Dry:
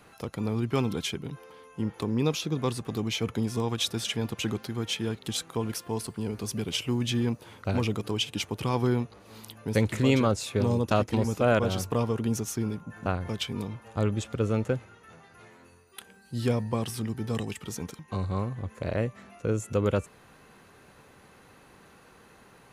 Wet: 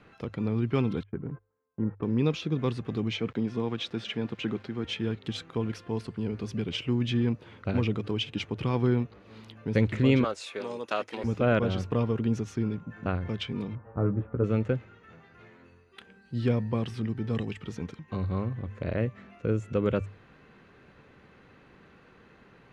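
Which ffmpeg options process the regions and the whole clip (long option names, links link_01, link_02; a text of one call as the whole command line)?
ffmpeg -i in.wav -filter_complex "[0:a]asettb=1/sr,asplit=3[link_01][link_02][link_03];[link_01]atrim=end=1.034[link_04];[link_02]atrim=start=1.03:end=2.03,asetpts=PTS-STARTPTS,afade=type=in:duration=0.004:curve=qsin,afade=type=out:start_time=0.996:duration=0.004:curve=qsin,lowpass=frequency=1600:width=0.5412,lowpass=frequency=1600:width=1.3066,agate=range=-29dB:threshold=-45dB:ratio=16:release=100:detection=peak[link_05];[link_03]atrim=start=2.026[link_06];[link_04][link_05]acrossfade=duration=0.004:curve1=hsin:curve2=qsin[link_07];[link_07][link_06]acrossfade=duration=0.004:curve1=qsin:curve2=hsin,asettb=1/sr,asplit=3[link_08][link_09][link_10];[link_08]atrim=end=3.174[link_11];[link_09]atrim=start=3.17:end=4.85,asetpts=PTS-STARTPTS,afade=type=in:duration=0.004:curve=qsin,afade=type=out:start_time=1.676:duration=0.004:curve=qsin,highpass=150,highshelf=frequency=7100:gain=-12,aeval=exprs='val(0)*gte(abs(val(0)),0.00335)':channel_layout=same[link_12];[link_10]atrim=start=4.846[link_13];[link_11][link_12]acrossfade=duration=0.004:curve1=hsin:curve2=qsin[link_14];[link_14][link_13]acrossfade=duration=0.004:curve1=qsin:curve2=hsin,asettb=1/sr,asplit=3[link_15][link_16][link_17];[link_15]atrim=end=10.244[link_18];[link_16]atrim=start=10.24:end=11.24,asetpts=PTS-STARTPTS,afade=type=in:duration=0.004:curve=qsin,afade=type=out:start_time=0.996:duration=0.004:curve=qsin,highpass=580,equalizer=frequency=10000:width_type=o:width=1.1:gain=10.5[link_19];[link_17]atrim=start=11.236[link_20];[link_18][link_19]acrossfade=duration=0.004:curve1=hsin:curve2=qsin[link_21];[link_21][link_20]acrossfade=duration=0.004:curve1=qsin:curve2=hsin,asettb=1/sr,asplit=3[link_22][link_23][link_24];[link_22]atrim=end=13.754[link_25];[link_23]atrim=start=13.75:end=14.44,asetpts=PTS-STARTPTS,afade=type=in:duration=0.004:curve=qsin,afade=type=out:start_time=0.686:duration=0.004:curve=qsin,lowpass=frequency=1400:width=0.5412,lowpass=frequency=1400:width=1.3066,asplit=2[link_26][link_27];[link_27]adelay=16,volume=-6dB[link_28];[link_26][link_28]amix=inputs=2:normalize=0,atrim=end_sample=30429[link_29];[link_24]atrim=start=14.436[link_30];[link_25][link_29]acrossfade=duration=0.004:curve1=hsin:curve2=qsin[link_31];[link_31][link_30]acrossfade=duration=0.004:curve1=qsin:curve2=hsin,lowpass=2800,equalizer=frequency=850:width=1.1:gain=-6.5,bandreject=frequency=50:width_type=h:width=6,bandreject=frequency=100:width_type=h:width=6,volume=1.5dB" out.wav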